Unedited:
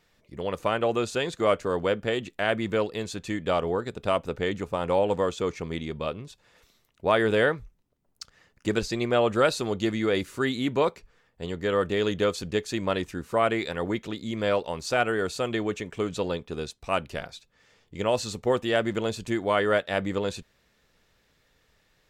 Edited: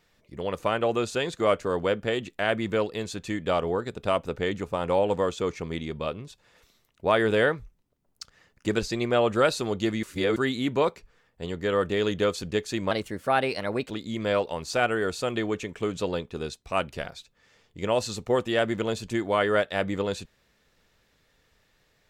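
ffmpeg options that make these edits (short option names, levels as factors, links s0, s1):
-filter_complex "[0:a]asplit=5[s0][s1][s2][s3][s4];[s0]atrim=end=10.032[s5];[s1]atrim=start=10.028:end=10.362,asetpts=PTS-STARTPTS,areverse[s6];[s2]atrim=start=10.358:end=12.914[s7];[s3]atrim=start=12.91:end=14.07,asetpts=PTS-STARTPTS,asetrate=51597,aresample=44100,atrim=end_sample=43723,asetpts=PTS-STARTPTS[s8];[s4]atrim=start=14.066[s9];[s5][s6]acrossfade=d=0.004:c1=hsin:c2=hsin[s10];[s10][s7]acrossfade=d=0.004:c1=hsin:c2=hsin[s11];[s11][s8]acrossfade=d=0.004:c1=hsin:c2=hsin[s12];[s12][s9]acrossfade=d=0.004:c1=hsin:c2=hsin"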